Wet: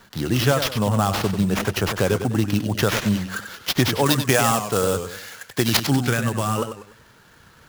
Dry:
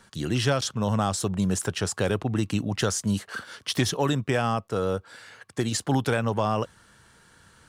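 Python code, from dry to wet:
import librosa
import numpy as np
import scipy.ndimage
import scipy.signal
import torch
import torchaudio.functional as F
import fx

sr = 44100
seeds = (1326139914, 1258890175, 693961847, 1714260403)

y = fx.dereverb_blind(x, sr, rt60_s=0.52)
y = fx.sample_hold(y, sr, seeds[0], rate_hz=8600.0, jitter_pct=20)
y = fx.high_shelf(y, sr, hz=2000.0, db=8.5, at=(4.06, 5.77))
y = fx.spec_box(y, sr, start_s=5.85, length_s=0.73, low_hz=400.0, high_hz=1100.0, gain_db=-7)
y = fx.echo_warbled(y, sr, ms=97, feedback_pct=37, rate_hz=2.8, cents=144, wet_db=-8.5)
y = y * 10.0 ** (5.0 / 20.0)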